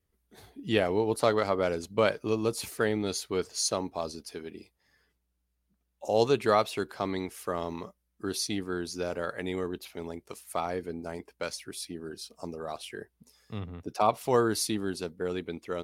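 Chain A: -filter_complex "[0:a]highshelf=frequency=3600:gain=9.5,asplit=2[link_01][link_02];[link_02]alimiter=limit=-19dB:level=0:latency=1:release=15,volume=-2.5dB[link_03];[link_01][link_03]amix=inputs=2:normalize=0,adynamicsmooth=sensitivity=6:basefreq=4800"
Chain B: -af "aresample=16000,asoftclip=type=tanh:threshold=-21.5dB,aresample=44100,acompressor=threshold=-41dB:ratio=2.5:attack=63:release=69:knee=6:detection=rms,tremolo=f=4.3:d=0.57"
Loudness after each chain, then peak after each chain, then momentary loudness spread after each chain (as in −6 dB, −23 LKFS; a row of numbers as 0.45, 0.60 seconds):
−26.0, −42.5 LKFS; −6.5, −25.0 dBFS; 14, 9 LU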